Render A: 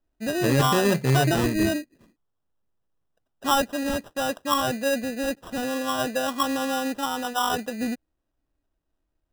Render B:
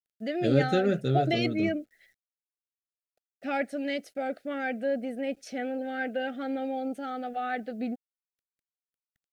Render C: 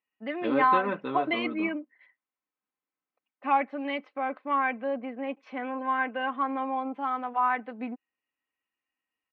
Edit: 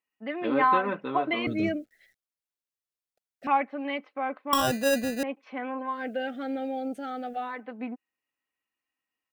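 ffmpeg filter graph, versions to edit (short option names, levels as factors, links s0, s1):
-filter_complex "[1:a]asplit=2[s0][s1];[2:a]asplit=4[s2][s3][s4][s5];[s2]atrim=end=1.472[s6];[s0]atrim=start=1.468:end=3.472[s7];[s3]atrim=start=3.468:end=4.532[s8];[0:a]atrim=start=4.528:end=5.232[s9];[s4]atrim=start=5.228:end=6.06[s10];[s1]atrim=start=5.82:end=7.65[s11];[s5]atrim=start=7.41[s12];[s6][s7]acrossfade=d=0.004:c1=hsin:c2=hsin[s13];[s13][s8]acrossfade=d=0.004:c1=hsin:c2=hsin[s14];[s14][s9]acrossfade=d=0.004:c1=hsin:c2=hsin[s15];[s15][s10]acrossfade=d=0.004:c1=hsin:c2=hsin[s16];[s16][s11]acrossfade=d=0.24:c1=tri:c2=tri[s17];[s17][s12]acrossfade=d=0.24:c1=tri:c2=tri"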